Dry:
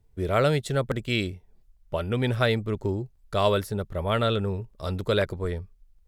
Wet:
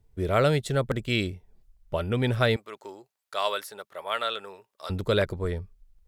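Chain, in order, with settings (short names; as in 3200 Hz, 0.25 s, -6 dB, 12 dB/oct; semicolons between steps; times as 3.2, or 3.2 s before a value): 2.56–4.9 HPF 820 Hz 12 dB/oct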